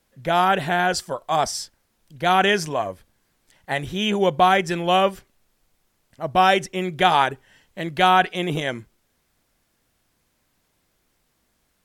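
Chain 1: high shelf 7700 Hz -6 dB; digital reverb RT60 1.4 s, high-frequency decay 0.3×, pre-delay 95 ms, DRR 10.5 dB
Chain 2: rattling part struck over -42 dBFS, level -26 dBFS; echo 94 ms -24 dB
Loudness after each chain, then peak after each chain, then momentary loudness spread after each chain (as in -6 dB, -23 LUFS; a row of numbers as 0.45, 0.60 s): -20.5, -21.0 LUFS; -4.0, -3.5 dBFS; 16, 13 LU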